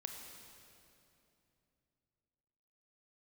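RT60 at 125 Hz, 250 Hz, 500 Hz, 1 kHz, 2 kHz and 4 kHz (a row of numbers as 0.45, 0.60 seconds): 3.9, 3.5, 3.1, 2.6, 2.5, 2.3 seconds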